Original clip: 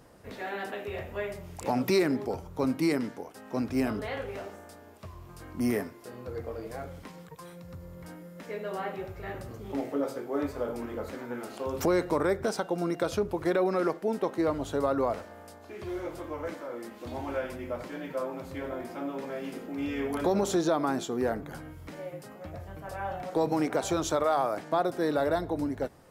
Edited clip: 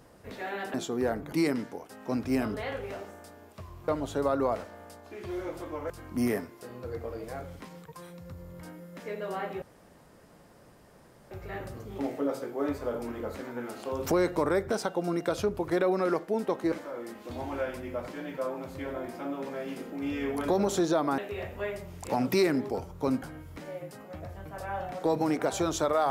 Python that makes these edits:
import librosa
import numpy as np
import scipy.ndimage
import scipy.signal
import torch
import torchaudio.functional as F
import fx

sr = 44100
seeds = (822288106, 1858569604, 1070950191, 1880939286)

y = fx.edit(x, sr, fx.swap(start_s=0.74, length_s=2.04, other_s=20.94, other_length_s=0.59),
    fx.insert_room_tone(at_s=9.05, length_s=1.69),
    fx.move(start_s=14.46, length_s=2.02, to_s=5.33), tone=tone)